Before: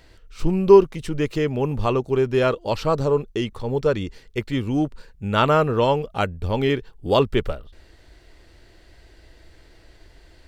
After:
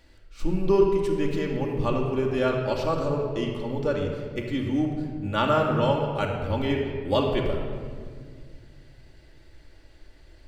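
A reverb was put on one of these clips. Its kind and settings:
rectangular room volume 3,300 cubic metres, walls mixed, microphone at 2.4 metres
level −7.5 dB

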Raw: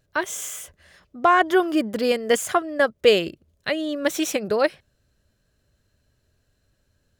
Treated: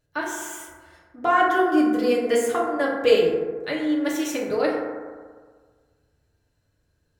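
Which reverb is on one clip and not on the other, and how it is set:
feedback delay network reverb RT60 1.6 s, low-frequency decay 0.95×, high-frequency decay 0.3×, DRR −4 dB
level −7.5 dB

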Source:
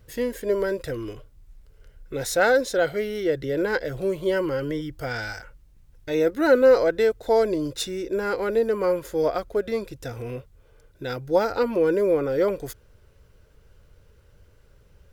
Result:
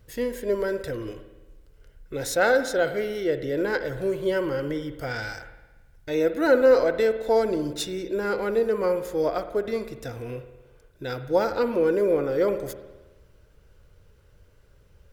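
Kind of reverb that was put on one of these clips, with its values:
spring reverb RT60 1.2 s, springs 54 ms, chirp 50 ms, DRR 10 dB
level −1.5 dB

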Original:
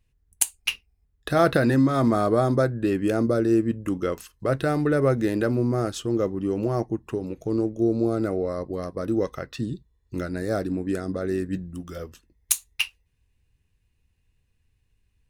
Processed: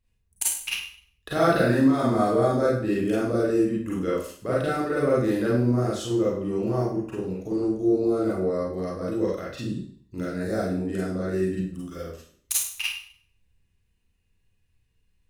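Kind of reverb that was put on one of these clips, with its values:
four-comb reverb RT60 0.52 s, combs from 33 ms, DRR −7 dB
level −8 dB

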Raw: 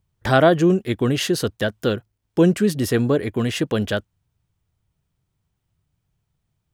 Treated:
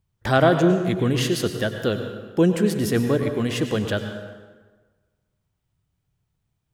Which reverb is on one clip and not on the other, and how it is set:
dense smooth reverb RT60 1.4 s, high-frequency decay 0.7×, pre-delay 85 ms, DRR 6.5 dB
level −2.5 dB

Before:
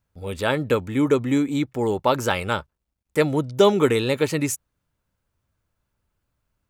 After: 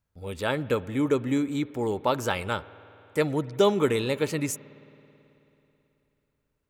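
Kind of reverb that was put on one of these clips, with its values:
spring reverb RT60 3.3 s, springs 54 ms, chirp 45 ms, DRR 18.5 dB
level −5 dB

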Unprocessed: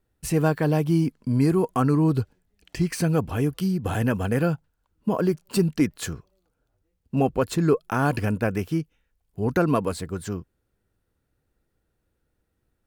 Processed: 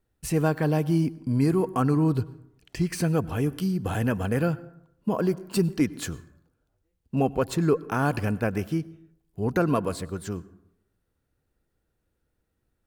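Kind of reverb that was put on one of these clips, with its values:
dense smooth reverb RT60 0.79 s, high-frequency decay 0.45×, pre-delay 85 ms, DRR 19.5 dB
level −2 dB

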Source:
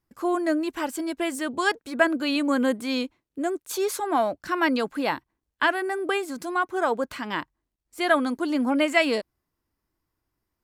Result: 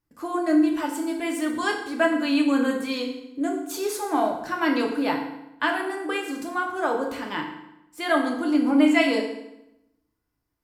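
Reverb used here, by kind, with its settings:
feedback delay network reverb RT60 0.88 s, low-frequency decay 1.2×, high-frequency decay 0.85×, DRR 0 dB
level −3.5 dB

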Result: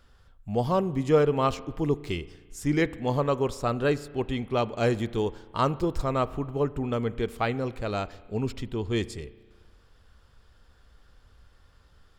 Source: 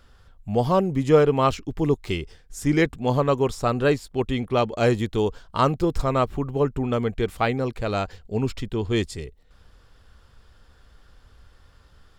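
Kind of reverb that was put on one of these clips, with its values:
spring reverb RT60 1.5 s, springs 34 ms, chirp 55 ms, DRR 17 dB
level −4.5 dB

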